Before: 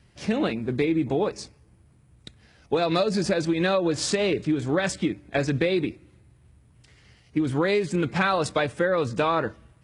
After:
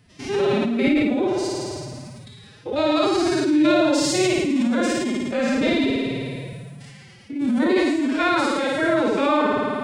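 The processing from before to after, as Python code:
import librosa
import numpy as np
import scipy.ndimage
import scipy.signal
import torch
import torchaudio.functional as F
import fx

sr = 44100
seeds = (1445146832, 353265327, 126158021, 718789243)

p1 = fx.spec_steps(x, sr, hold_ms=100)
p2 = p1 + fx.room_flutter(p1, sr, wall_m=9.4, rt60_s=1.3, dry=0)
p3 = fx.pitch_keep_formants(p2, sr, semitones=10.5)
p4 = fx.sustainer(p3, sr, db_per_s=21.0)
y = p4 * 10.0 ** (2.5 / 20.0)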